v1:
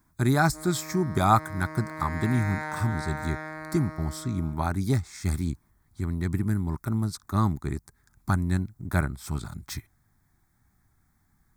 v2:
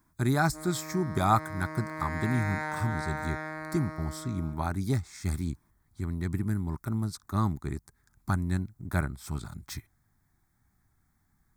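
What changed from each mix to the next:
speech -3.5 dB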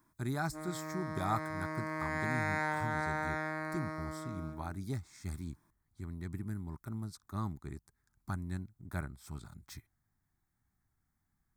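speech -10.0 dB

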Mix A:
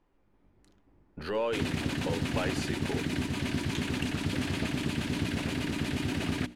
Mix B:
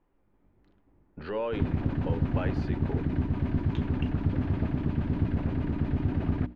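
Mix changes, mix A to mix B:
background: remove weighting filter D; master: add air absorption 310 m

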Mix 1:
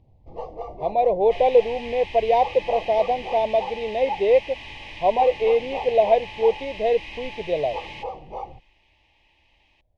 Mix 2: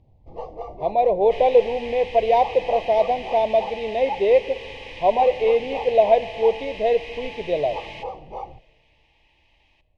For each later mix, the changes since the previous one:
speech: send on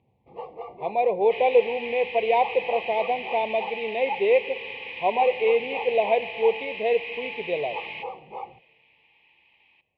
master: add speaker cabinet 210–3400 Hz, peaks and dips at 300 Hz -8 dB, 620 Hz -10 dB, 1600 Hz -5 dB, 2400 Hz +7 dB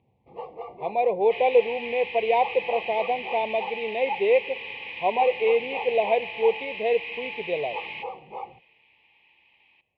speech: send -6.0 dB

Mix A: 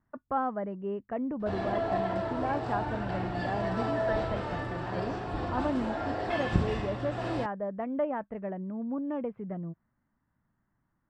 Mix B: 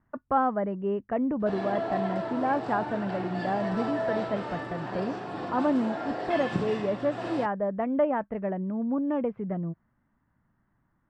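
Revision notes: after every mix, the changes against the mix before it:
speech +5.5 dB; background: add HPF 140 Hz 24 dB/oct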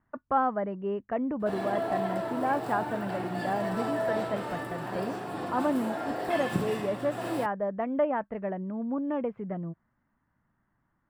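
speech: add low shelf 450 Hz -4.5 dB; master: remove LPF 6200 Hz 24 dB/oct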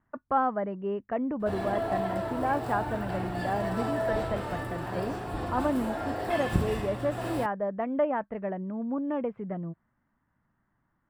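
background: remove HPF 140 Hz 24 dB/oct

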